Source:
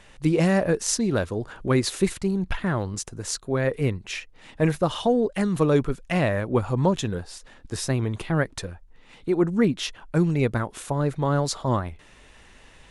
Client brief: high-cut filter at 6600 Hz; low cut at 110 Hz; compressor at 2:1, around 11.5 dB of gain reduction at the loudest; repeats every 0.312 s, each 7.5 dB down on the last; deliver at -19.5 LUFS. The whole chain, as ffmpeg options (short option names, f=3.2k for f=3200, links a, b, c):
-af "highpass=110,lowpass=6.6k,acompressor=threshold=-38dB:ratio=2,aecho=1:1:312|624|936|1248|1560:0.422|0.177|0.0744|0.0312|0.0131,volume=15dB"